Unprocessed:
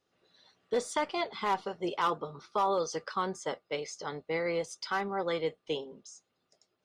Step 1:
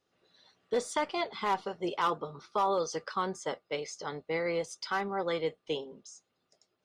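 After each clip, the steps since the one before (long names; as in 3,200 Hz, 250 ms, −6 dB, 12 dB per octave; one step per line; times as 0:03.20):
no processing that can be heard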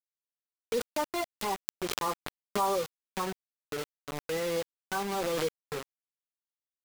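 harmonic-percussive split with one part muted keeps harmonic
bit-depth reduction 6 bits, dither none
background raised ahead of every attack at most 33 dB per second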